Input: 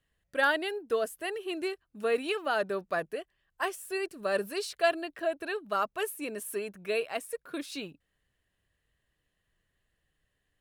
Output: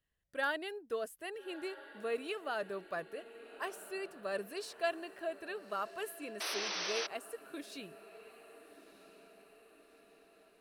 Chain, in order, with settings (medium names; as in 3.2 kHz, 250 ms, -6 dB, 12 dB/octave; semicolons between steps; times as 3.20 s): echo that smears into a reverb 1295 ms, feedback 53%, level -15 dB; painted sound noise, 6.40–7.07 s, 300–6200 Hz -30 dBFS; trim -8.5 dB